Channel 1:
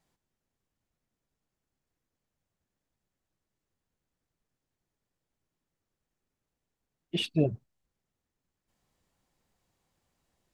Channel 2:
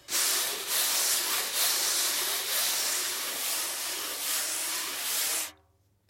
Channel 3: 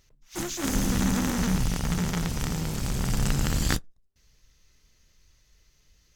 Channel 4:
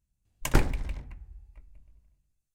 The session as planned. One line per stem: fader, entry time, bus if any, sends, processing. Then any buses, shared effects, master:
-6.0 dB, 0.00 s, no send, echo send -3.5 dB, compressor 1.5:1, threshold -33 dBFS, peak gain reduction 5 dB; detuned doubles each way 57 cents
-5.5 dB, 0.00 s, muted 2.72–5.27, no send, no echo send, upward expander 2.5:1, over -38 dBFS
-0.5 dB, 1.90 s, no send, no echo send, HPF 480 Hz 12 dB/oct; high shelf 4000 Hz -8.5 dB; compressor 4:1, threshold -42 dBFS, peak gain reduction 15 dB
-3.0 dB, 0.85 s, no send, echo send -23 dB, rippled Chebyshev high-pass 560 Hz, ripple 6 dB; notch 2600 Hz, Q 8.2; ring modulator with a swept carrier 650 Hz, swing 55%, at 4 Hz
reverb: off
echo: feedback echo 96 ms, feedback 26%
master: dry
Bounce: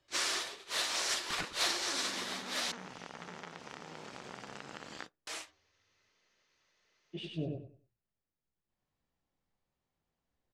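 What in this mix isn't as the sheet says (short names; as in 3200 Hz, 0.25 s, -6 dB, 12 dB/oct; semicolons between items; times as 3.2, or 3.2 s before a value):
stem 2 -5.5 dB -> +1.5 dB; stem 3: entry 1.90 s -> 1.30 s; master: extra air absorption 98 m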